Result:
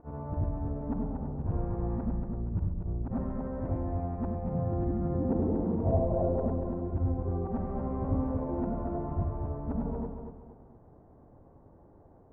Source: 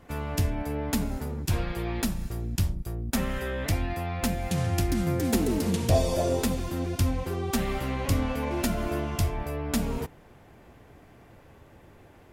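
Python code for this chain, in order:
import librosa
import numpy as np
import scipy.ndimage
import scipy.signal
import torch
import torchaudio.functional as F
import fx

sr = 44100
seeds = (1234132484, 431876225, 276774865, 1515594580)

p1 = fx.frame_reverse(x, sr, frame_ms=207.0)
p2 = scipy.signal.sosfilt(scipy.signal.butter(4, 1000.0, 'lowpass', fs=sr, output='sos'), p1)
p3 = p2 + fx.echo_feedback(p2, sr, ms=234, feedback_pct=35, wet_db=-6.5, dry=0)
y = F.gain(torch.from_numpy(p3), -1.0).numpy()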